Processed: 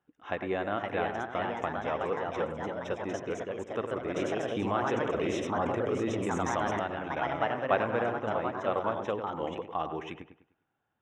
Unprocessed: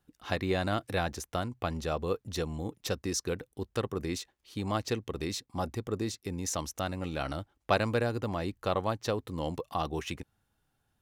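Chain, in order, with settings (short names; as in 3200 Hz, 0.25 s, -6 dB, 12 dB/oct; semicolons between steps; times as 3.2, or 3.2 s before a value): HPF 580 Hz 6 dB/oct; dark delay 0.101 s, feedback 34%, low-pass 2500 Hz, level -8.5 dB; echoes that change speed 0.551 s, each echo +2 st, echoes 3; Butterworth band-stop 4500 Hz, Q 2.2; tape spacing loss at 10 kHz 33 dB; 4.16–6.8 fast leveller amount 70%; gain +4.5 dB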